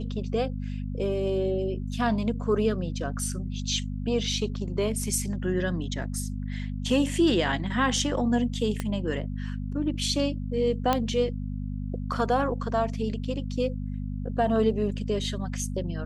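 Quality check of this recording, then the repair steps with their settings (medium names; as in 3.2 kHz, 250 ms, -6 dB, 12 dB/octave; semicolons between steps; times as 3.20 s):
hum 50 Hz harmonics 5 -32 dBFS
8.80 s: pop -15 dBFS
10.93 s: pop -10 dBFS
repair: de-click; de-hum 50 Hz, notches 5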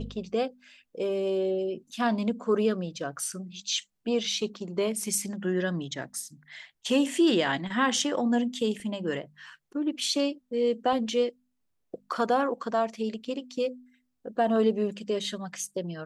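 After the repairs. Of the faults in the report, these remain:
8.80 s: pop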